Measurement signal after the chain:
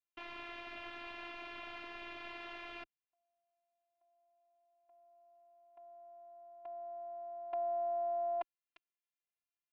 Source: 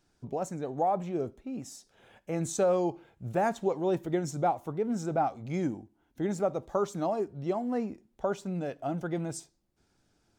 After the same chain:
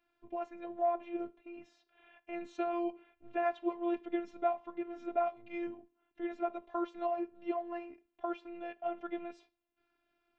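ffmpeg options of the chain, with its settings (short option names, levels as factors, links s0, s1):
-af "highpass=120,equalizer=f=140:t=q:w=4:g=-5,equalizer=f=210:t=q:w=4:g=-7,equalizer=f=300:t=q:w=4:g=-8,equalizer=f=480:t=q:w=4:g=-5,equalizer=f=2600:t=q:w=4:g=6,lowpass=f=3200:w=0.5412,lowpass=f=3200:w=1.3066,afftfilt=real='hypot(re,im)*cos(PI*b)':imag='0':win_size=512:overlap=0.75"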